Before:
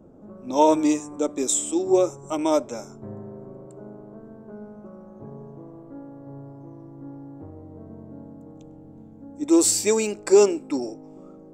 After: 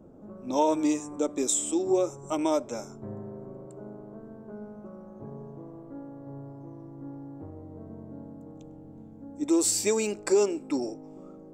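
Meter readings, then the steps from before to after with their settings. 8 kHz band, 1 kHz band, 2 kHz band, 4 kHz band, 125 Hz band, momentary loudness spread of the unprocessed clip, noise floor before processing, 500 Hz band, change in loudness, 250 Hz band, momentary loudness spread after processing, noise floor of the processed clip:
-4.5 dB, -6.0 dB, -4.0 dB, -4.5 dB, -2.0 dB, 24 LU, -46 dBFS, -6.0 dB, -6.0 dB, -4.5 dB, 20 LU, -47 dBFS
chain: compressor 2:1, threshold -22 dBFS, peak gain reduction 6.5 dB; gain -1.5 dB

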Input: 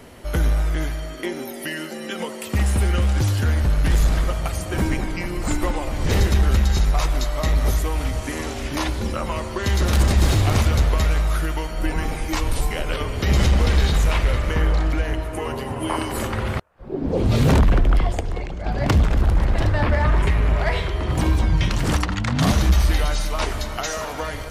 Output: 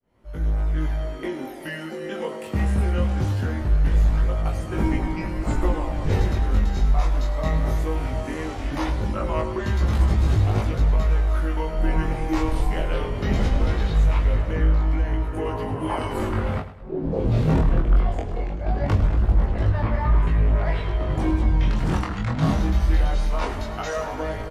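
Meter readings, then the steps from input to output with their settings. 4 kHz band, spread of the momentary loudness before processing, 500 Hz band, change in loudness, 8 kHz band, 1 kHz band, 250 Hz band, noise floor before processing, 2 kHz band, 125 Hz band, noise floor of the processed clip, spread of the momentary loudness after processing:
-10.0 dB, 10 LU, -1.5 dB, -2.0 dB, -13.0 dB, -2.5 dB, -1.5 dB, -32 dBFS, -6.0 dB, -2.0 dB, -33 dBFS, 8 LU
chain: opening faded in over 1.08 s; doubler 19 ms -5.5 dB; chorus 0.2 Hz, delay 18 ms, depth 7.3 ms; high shelf 2200 Hz -11 dB; in parallel at +2 dB: vocal rider within 4 dB 0.5 s; on the sum: high shelf 8300 Hz -4 dB; on a send: feedback echo 0.105 s, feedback 42%, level -13 dB; on the sum: gain -7.5 dB

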